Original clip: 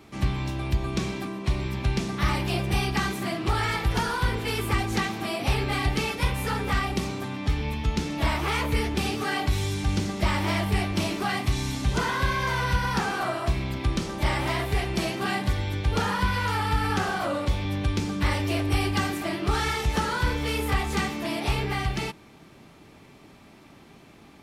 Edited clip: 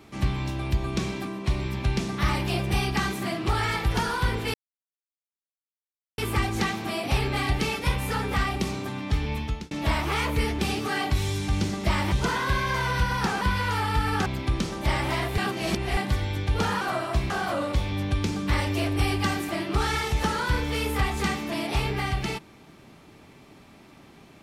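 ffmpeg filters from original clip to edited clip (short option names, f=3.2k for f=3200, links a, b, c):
-filter_complex "[0:a]asplit=10[a][b][c][d][e][f][g][h][i][j];[a]atrim=end=4.54,asetpts=PTS-STARTPTS,afade=t=out:st=4.536:d=0.004:c=hsin,apad=pad_dur=1.64[k];[b]atrim=start=4.54:end=8.07,asetpts=PTS-STARTPTS,afade=t=in:d=0.004:c=hsin,afade=t=out:st=3.23:d=0.3[l];[c]atrim=start=8.07:end=10.482,asetpts=PTS-STARTPTS,afade=t=in:d=0.004:c=hsin[m];[d]atrim=start=11.848:end=13.142[n];[e]atrim=start=16.178:end=17.032[o];[f]atrim=start=13.628:end=14.752[p];[g]atrim=start=14.748:end=15.342,asetpts=PTS-STARTPTS,areverse[q];[h]atrim=start=15.338:end=16.182[r];[i]atrim=start=13.138:end=13.632[s];[j]atrim=start=17.028[t];[k][l][m]concat=n=3:v=0:a=1[u];[u][n]acrossfade=d=0.004:c1=hsin:c2=hsin[v];[v][o]acrossfade=d=0.004:c1=hsin:c2=hsin[w];[w][p]acrossfade=d=0.004:c1=hsin:c2=hsin[x];[x][q]acrossfade=d=0.004:c1=hsin:c2=hsin[y];[y][r]acrossfade=d=0.004:c1=hsin:c2=hsin[z];[z][s]acrossfade=d=0.004:c1=hsin:c2=hsin[aa];[aa][t]acrossfade=d=0.004:c1=hsin:c2=hsin"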